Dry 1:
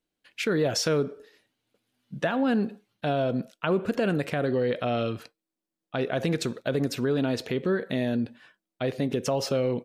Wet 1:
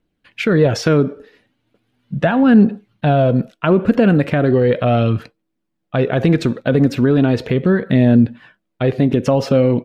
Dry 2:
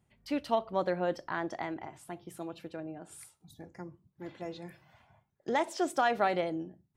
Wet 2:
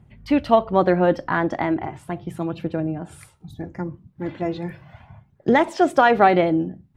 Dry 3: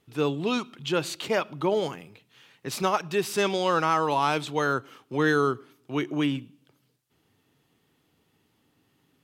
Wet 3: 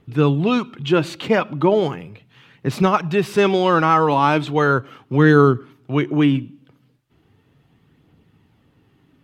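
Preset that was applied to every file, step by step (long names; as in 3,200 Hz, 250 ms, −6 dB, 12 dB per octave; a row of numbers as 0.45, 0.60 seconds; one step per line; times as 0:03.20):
bass and treble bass +8 dB, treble −12 dB
phase shifter 0.37 Hz, delay 4.2 ms, feedback 27%
normalise the peak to −2 dBFS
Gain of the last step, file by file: +9.0, +12.5, +7.0 decibels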